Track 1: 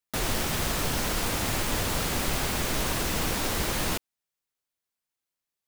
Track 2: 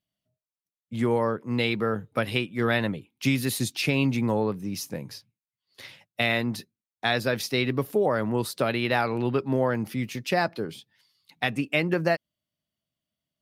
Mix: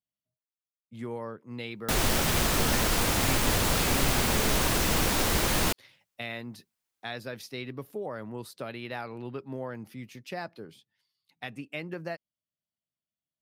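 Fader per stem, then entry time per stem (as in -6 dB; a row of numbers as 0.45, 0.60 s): +2.5, -12.5 dB; 1.75, 0.00 s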